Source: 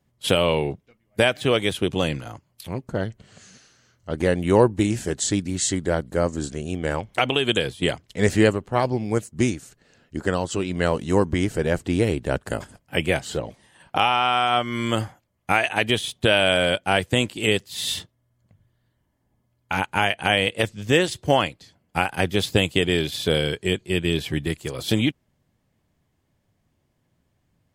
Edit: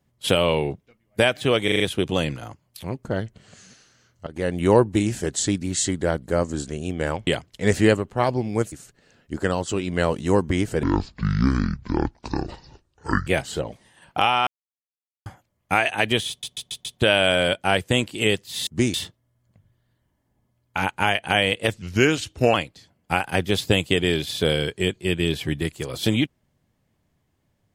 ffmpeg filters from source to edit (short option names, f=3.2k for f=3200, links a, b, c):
-filter_complex "[0:a]asplit=20[a][b][c][d][e][f][g][h][i][j][k][l][m][n][o][p][q][r][s][t];[a]atrim=end=1.682[u];[b]atrim=start=1.638:end=1.682[v];[c]atrim=start=1.638:end=1.682[w];[d]atrim=start=1.638:end=1.682[x];[e]atrim=start=1.638:end=4.11,asetpts=PTS-STARTPTS,afade=t=out:st=2.468:d=0.004:c=hsin:silence=0.158489[y];[f]atrim=start=4.11:end=7.112,asetpts=PTS-STARTPTS,afade=t=in:d=0.35:silence=0.158489[z];[g]atrim=start=7.828:end=9.282[aa];[h]atrim=start=9.548:end=11.664[ab];[i]atrim=start=11.66:end=13.05,asetpts=PTS-STARTPTS,asetrate=25137,aresample=44100,atrim=end_sample=107542,asetpts=PTS-STARTPTS[ac];[j]atrim=start=13.046:end=14.25,asetpts=PTS-STARTPTS,afade=t=out:st=1.2:d=0.004:c=hsin[ad];[k]atrim=start=14.25:end=15.04,asetpts=PTS-STARTPTS,volume=0[ae];[l]atrim=start=15.04:end=16.212,asetpts=PTS-STARTPTS,afade=t=in:d=0.004:c=hsin[af];[m]atrim=start=16.068:end=16.212[ag];[n]atrim=start=16.068:end=16.212[ah];[o]atrim=start=16.068:end=16.212[ai];[p]atrim=start=16.068:end=17.892[aj];[q]atrim=start=9.278:end=9.552[ak];[r]atrim=start=17.888:end=20.774[al];[s]atrim=start=20.77:end=21.39,asetpts=PTS-STARTPTS,asetrate=37926,aresample=44100,atrim=end_sample=31793,asetpts=PTS-STARTPTS[am];[t]atrim=start=21.386[an];[u][v]acrossfade=d=0.004:c1=hsin:c2=hsin[ao];[ao][w]acrossfade=d=0.004:c1=hsin:c2=hsin[ap];[ap][x]acrossfade=d=0.004:c1=hsin:c2=hsin[aq];[y][z]concat=n=2:v=0:a=1[ar];[aq][ar]acrossfade=d=0.004:c1=hsin:c2=hsin[as];[as][aa]acrossfade=d=0.004:c1=hsin:c2=hsin[at];[at][ab]acrossfade=d=0.004:c1=hsin:c2=hsin[au];[au][ac]acrossfade=d=0.004:c1=hsin:c2=hsin[av];[ad][ae][af]concat=n=3:v=0:a=1[aw];[av][aw]acrossfade=d=0.004:c1=hsin:c2=hsin[ax];[ax][ag]acrossfade=d=0.004:c1=hsin:c2=hsin[ay];[ay][ah]acrossfade=d=0.004:c1=hsin:c2=hsin[az];[az][ai]acrossfade=d=0.004:c1=hsin:c2=hsin[ba];[ba][aj]acrossfade=d=0.004:c1=hsin:c2=hsin[bb];[bb][ak]acrossfade=d=0.004:c1=hsin:c2=hsin[bc];[bc][al]acrossfade=d=0.004:c1=hsin:c2=hsin[bd];[bd][am]acrossfade=d=0.004:c1=hsin:c2=hsin[be];[be][an]acrossfade=d=0.004:c1=hsin:c2=hsin"